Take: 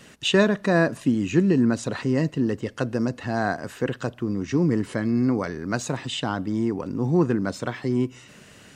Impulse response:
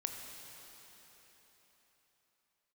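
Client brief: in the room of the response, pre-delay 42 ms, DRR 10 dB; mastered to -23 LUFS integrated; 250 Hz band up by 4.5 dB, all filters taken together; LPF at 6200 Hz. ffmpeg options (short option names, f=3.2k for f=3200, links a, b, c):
-filter_complex "[0:a]lowpass=6.2k,equalizer=f=250:t=o:g=5.5,asplit=2[a][b];[1:a]atrim=start_sample=2205,adelay=42[c];[b][c]afir=irnorm=-1:irlink=0,volume=-10.5dB[d];[a][d]amix=inputs=2:normalize=0,volume=-2.5dB"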